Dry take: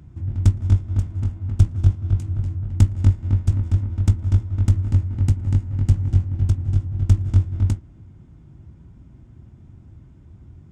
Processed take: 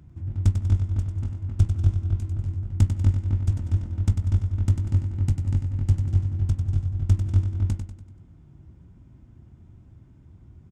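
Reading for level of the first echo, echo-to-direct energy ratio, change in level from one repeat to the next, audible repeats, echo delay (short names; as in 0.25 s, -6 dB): -7.5 dB, -6.5 dB, -7.0 dB, 4, 96 ms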